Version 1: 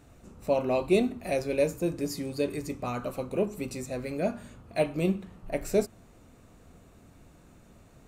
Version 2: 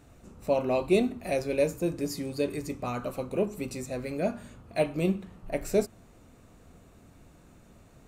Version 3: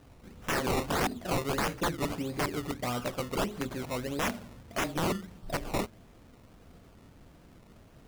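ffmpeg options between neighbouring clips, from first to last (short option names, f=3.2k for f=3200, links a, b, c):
-af anull
-af "acrusher=samples=19:mix=1:aa=0.000001:lfo=1:lforange=19:lforate=1.6,aeval=exprs='(mod(15*val(0)+1,2)-1)/15':c=same"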